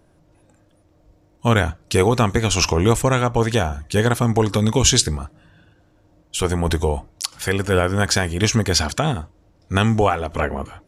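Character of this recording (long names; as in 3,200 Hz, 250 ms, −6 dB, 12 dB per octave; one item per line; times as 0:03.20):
background noise floor −57 dBFS
spectral slope −4.5 dB per octave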